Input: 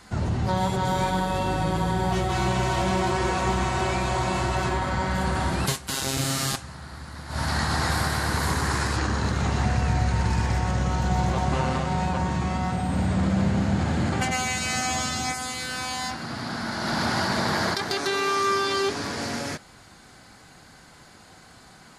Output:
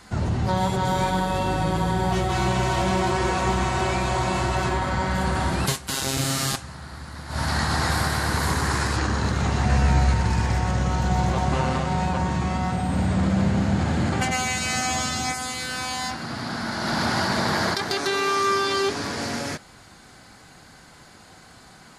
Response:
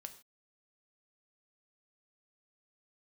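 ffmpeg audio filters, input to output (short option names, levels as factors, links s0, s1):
-filter_complex "[0:a]asettb=1/sr,asplit=3[s0][s1][s2];[s0]atrim=end=9.684[s3];[s1]atrim=start=9.68:end=10.14,asetpts=PTS-STARTPTS,afade=t=in:d=0.004:c=qsin,afade=t=out:st=0.456:d=0.004:c=qsin,asplit=2[s4][s5];[s5]adelay=14,volume=0.794[s6];[s4][s6]amix=inputs=2:normalize=0,atrim=end_sample=20286[s7];[s2]atrim=start=10.136[s8];[s3][s7]acrossfade=d=0.004:c1=hsin:c2=qsin[s9];[s9][s8]acrossfade=d=0.004:c1=qsin:c2=hsin,volume=1.19"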